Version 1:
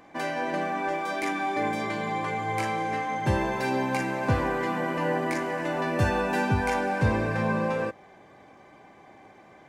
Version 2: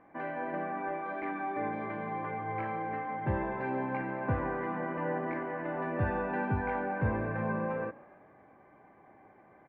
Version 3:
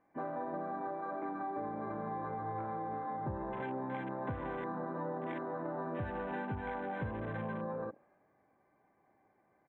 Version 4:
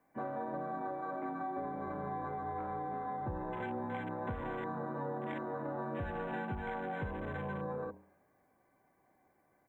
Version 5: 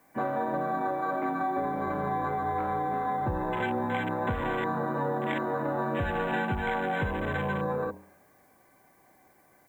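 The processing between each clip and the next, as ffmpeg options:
ffmpeg -i in.wav -filter_complex "[0:a]lowpass=frequency=2000:width=0.5412,lowpass=frequency=2000:width=1.3066,asplit=5[link_01][link_02][link_03][link_04][link_05];[link_02]adelay=140,afreqshift=32,volume=-22dB[link_06];[link_03]adelay=280,afreqshift=64,volume=-27dB[link_07];[link_04]adelay=420,afreqshift=96,volume=-32.1dB[link_08];[link_05]adelay=560,afreqshift=128,volume=-37.1dB[link_09];[link_01][link_06][link_07][link_08][link_09]amix=inputs=5:normalize=0,volume=-6.5dB" out.wav
ffmpeg -i in.wav -af "afwtdn=0.0126,acompressor=threshold=-39dB:ratio=6,volume=3dB" out.wav
ffmpeg -i in.wav -af "crystalizer=i=1.5:c=0,bandreject=frequency=108:width_type=h:width=4,bandreject=frequency=216:width_type=h:width=4,bandreject=frequency=324:width_type=h:width=4,bandreject=frequency=432:width_type=h:width=4,bandreject=frequency=540:width_type=h:width=4,bandreject=frequency=648:width_type=h:width=4,bandreject=frequency=756:width_type=h:width=4,bandreject=frequency=864:width_type=h:width=4,bandreject=frequency=972:width_type=h:width=4,bandreject=frequency=1080:width_type=h:width=4,afreqshift=-22" out.wav
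ffmpeg -i in.wav -af "highshelf=frequency=2300:gain=10,volume=8.5dB" out.wav

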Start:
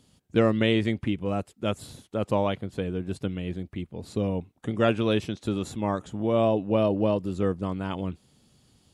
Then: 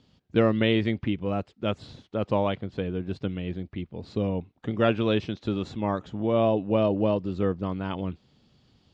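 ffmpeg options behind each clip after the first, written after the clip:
ffmpeg -i in.wav -af "lowpass=frequency=5000:width=0.5412,lowpass=frequency=5000:width=1.3066" out.wav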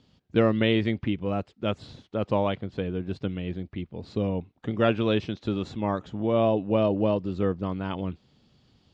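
ffmpeg -i in.wav -af anull out.wav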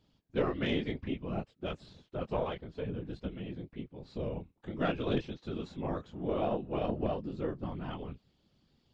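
ffmpeg -i in.wav -af "flanger=delay=17:depth=6.6:speed=0.55,afftfilt=real='hypot(re,im)*cos(2*PI*random(0))':imag='hypot(re,im)*sin(2*PI*random(1))':win_size=512:overlap=0.75,aeval=exprs='0.126*(cos(1*acos(clip(val(0)/0.126,-1,1)))-cos(1*PI/2))+0.00794*(cos(4*acos(clip(val(0)/0.126,-1,1)))-cos(4*PI/2))':channel_layout=same" out.wav

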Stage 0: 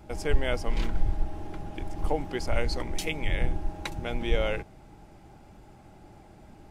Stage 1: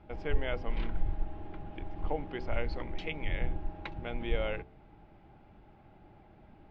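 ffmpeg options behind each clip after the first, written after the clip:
ffmpeg -i in.wav -af "lowpass=frequency=3400:width=0.5412,lowpass=frequency=3400:width=1.3066,bandreject=frequency=62.79:width_type=h:width=4,bandreject=frequency=125.58:width_type=h:width=4,bandreject=frequency=188.37:width_type=h:width=4,bandreject=frequency=251.16:width_type=h:width=4,bandreject=frequency=313.95:width_type=h:width=4,bandreject=frequency=376.74:width_type=h:width=4,bandreject=frequency=439.53:width_type=h:width=4,bandreject=frequency=502.32:width_type=h:width=4,bandreject=frequency=565.11:width_type=h:width=4,volume=-5.5dB" out.wav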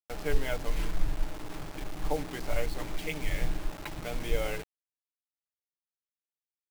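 ffmpeg -i in.wav -af "aecho=1:1:6.8:0.61,acrusher=bits=6:mix=0:aa=0.000001" out.wav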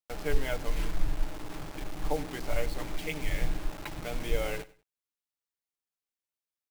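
ffmpeg -i in.wav -af "aecho=1:1:97|194:0.1|0.029" out.wav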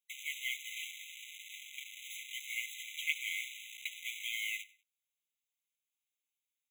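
ffmpeg -i in.wav -af "afftfilt=real='re*eq(mod(floor(b*sr/1024/2000),2),1)':imag='im*eq(mod(floor(b*sr/1024/2000),2),1)':win_size=1024:overlap=0.75,volume=4.5dB" out.wav

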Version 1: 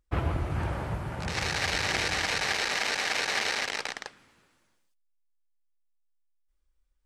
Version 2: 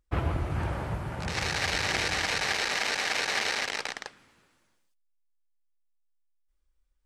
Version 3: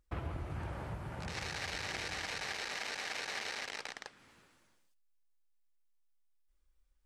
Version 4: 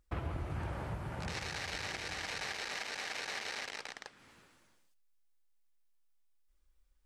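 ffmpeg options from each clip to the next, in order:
ffmpeg -i in.wav -af anull out.wav
ffmpeg -i in.wav -af "acompressor=threshold=-46dB:ratio=2" out.wav
ffmpeg -i in.wav -af "alimiter=level_in=4.5dB:limit=-24dB:level=0:latency=1:release=221,volume=-4.5dB,volume=2dB" out.wav

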